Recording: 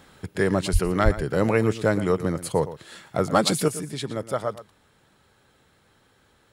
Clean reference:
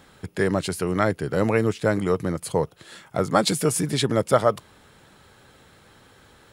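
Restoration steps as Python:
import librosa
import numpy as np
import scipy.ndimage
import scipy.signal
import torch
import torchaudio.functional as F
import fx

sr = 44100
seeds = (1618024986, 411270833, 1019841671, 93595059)

y = fx.fix_declip(x, sr, threshold_db=-7.5)
y = fx.highpass(y, sr, hz=140.0, slope=24, at=(0.72, 0.84), fade=0.02)
y = fx.highpass(y, sr, hz=140.0, slope=24, at=(1.04, 1.16), fade=0.02)
y = fx.fix_echo_inverse(y, sr, delay_ms=116, level_db=-14.5)
y = fx.fix_level(y, sr, at_s=3.68, step_db=8.5)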